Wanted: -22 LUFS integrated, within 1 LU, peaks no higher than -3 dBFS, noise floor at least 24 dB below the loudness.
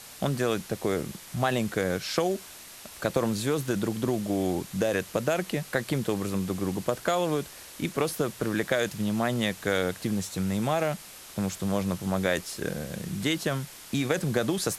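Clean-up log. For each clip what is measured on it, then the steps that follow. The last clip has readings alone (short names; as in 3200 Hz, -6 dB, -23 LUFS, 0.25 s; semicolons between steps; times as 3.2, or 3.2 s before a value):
noise floor -46 dBFS; noise floor target -53 dBFS; loudness -29.0 LUFS; peak -9.0 dBFS; loudness target -22.0 LUFS
-> noise print and reduce 7 dB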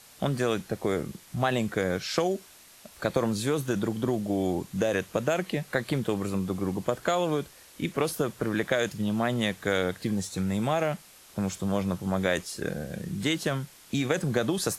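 noise floor -53 dBFS; loudness -29.0 LUFS; peak -9.0 dBFS; loudness target -22.0 LUFS
-> gain +7 dB; limiter -3 dBFS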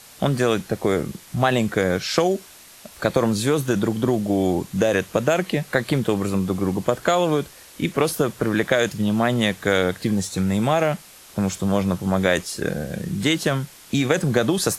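loudness -22.0 LUFS; peak -3.0 dBFS; noise floor -46 dBFS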